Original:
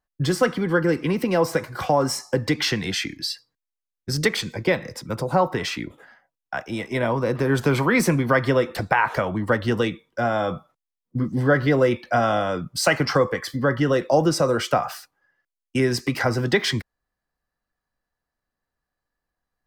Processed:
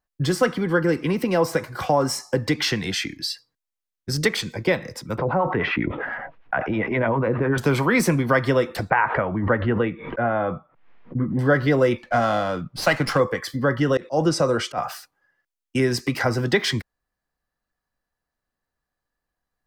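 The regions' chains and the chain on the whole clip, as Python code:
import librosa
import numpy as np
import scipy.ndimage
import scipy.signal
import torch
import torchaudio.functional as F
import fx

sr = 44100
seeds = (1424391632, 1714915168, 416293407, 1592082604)

y = fx.chain(x, sr, fx.lowpass(hz=2400.0, slope=24),
    fx.harmonic_tremolo(hz=9.9, depth_pct=70, crossover_hz=670.0),
    fx.env_flatten(amount_pct=70), at=(5.18, 7.58))
y = fx.chain(y, sr, fx.lowpass(hz=2300.0, slope=24),
    fx.pre_swell(db_per_s=87.0), at=(8.9, 11.39))
y = fx.chain(y, sr, fx.env_lowpass(base_hz=2500.0, full_db=-15.0),
    fx.peak_eq(hz=400.0, db=-5.5, octaves=0.3),
    fx.running_max(window=3), at=(11.98, 13.2))
y = fx.chain(y, sr, fx.lowpass(hz=9300.0, slope=12),
    fx.auto_swell(attack_ms=109.0), at=(13.97, 14.78))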